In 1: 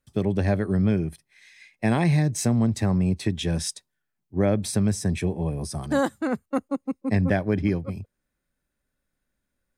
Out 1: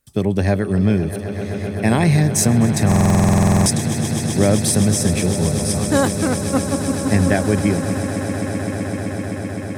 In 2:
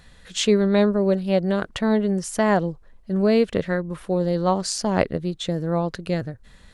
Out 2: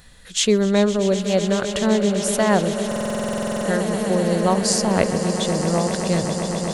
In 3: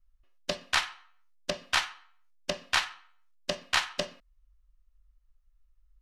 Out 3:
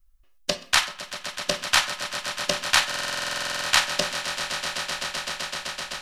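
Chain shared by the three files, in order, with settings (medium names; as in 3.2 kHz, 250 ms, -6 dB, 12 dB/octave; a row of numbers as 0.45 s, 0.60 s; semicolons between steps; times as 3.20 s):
treble shelf 6.5 kHz +11 dB; on a send: echo with a slow build-up 128 ms, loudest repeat 8, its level -14 dB; on the sum: buffer glitch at 2.87 s, samples 2048, times 16; peak normalisation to -2 dBFS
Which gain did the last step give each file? +5.5 dB, +0.5 dB, +4.5 dB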